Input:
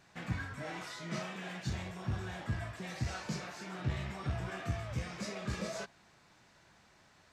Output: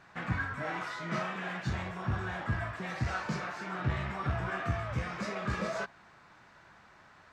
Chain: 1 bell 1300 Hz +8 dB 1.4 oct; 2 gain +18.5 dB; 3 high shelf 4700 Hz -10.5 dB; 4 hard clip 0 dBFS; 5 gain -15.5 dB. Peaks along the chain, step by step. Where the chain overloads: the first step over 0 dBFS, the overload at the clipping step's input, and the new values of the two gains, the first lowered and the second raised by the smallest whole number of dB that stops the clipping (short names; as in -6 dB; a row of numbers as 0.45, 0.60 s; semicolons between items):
-21.0, -2.5, -2.5, -2.5, -18.0 dBFS; no overload